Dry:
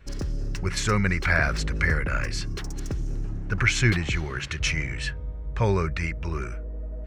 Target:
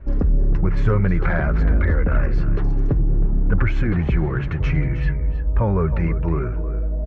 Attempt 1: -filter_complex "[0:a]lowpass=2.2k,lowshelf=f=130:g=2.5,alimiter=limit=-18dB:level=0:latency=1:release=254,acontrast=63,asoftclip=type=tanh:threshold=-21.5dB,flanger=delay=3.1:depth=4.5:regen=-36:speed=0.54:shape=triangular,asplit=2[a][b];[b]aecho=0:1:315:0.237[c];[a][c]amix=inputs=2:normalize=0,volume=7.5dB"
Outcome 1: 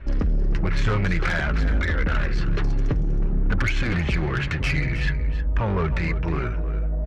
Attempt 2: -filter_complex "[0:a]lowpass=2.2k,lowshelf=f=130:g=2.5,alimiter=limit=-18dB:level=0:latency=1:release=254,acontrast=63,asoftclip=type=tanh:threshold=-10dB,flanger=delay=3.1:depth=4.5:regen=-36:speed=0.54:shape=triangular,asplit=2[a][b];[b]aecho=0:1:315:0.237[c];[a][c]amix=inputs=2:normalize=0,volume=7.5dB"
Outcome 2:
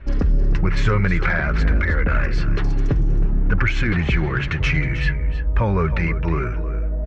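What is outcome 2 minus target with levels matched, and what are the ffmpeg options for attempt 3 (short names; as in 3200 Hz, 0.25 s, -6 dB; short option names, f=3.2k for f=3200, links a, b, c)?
2000 Hz band +7.0 dB
-filter_complex "[0:a]lowpass=970,lowshelf=f=130:g=2.5,alimiter=limit=-18dB:level=0:latency=1:release=254,acontrast=63,asoftclip=type=tanh:threshold=-10dB,flanger=delay=3.1:depth=4.5:regen=-36:speed=0.54:shape=triangular,asplit=2[a][b];[b]aecho=0:1:315:0.237[c];[a][c]amix=inputs=2:normalize=0,volume=7.5dB"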